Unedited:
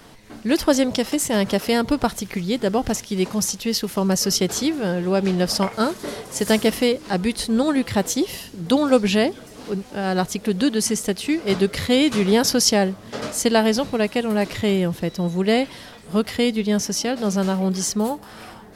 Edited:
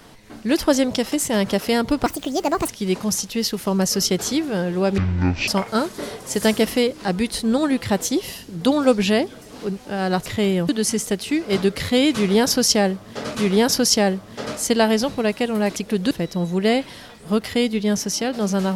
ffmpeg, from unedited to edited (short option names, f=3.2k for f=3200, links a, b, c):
-filter_complex "[0:a]asplit=10[a][b][c][d][e][f][g][h][i][j];[a]atrim=end=2.064[k];[b]atrim=start=2.06:end=2.99,asetpts=PTS-STARTPTS,asetrate=65268,aresample=44100,atrim=end_sample=27711,asetpts=PTS-STARTPTS[l];[c]atrim=start=2.986:end=5.284[m];[d]atrim=start=5.28:end=5.53,asetpts=PTS-STARTPTS,asetrate=22050,aresample=44100[n];[e]atrim=start=5.526:end=10.312[o];[f]atrim=start=14.508:end=14.942[p];[g]atrim=start=10.658:end=13.322[q];[h]atrim=start=12.098:end=14.512[r];[i]atrim=start=10.308:end=10.662[s];[j]atrim=start=14.938[t];[k][l]acrossfade=d=0.004:c1=hsin:c2=hsin[u];[u][m]acrossfade=d=0.004:c1=hsin:c2=hsin[v];[v][n]acrossfade=d=0.004:c1=hsin:c2=hsin[w];[w][o]acrossfade=d=0.004:c1=hsin:c2=hsin[x];[x][p]acrossfade=d=0.004:c1=hsin:c2=hsin[y];[y][q]acrossfade=d=0.004:c1=hsin:c2=hsin[z];[z][r]acrossfade=d=0.004:c1=hsin:c2=hsin[aa];[aa][s]acrossfade=d=0.004:c1=hsin:c2=hsin[ab];[ab][t]acrossfade=d=0.004:c1=hsin:c2=hsin"